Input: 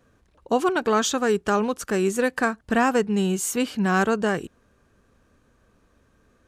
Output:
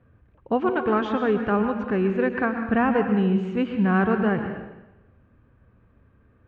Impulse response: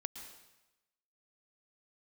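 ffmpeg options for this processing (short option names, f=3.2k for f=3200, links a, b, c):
-filter_complex "[0:a]lowpass=f=2.6k:w=0.5412,lowpass=f=2.6k:w=1.3066,equalizer=f=100:t=o:w=1.6:g=12[a];[1:a]atrim=start_sample=2205[b];[a][b]afir=irnorm=-1:irlink=0"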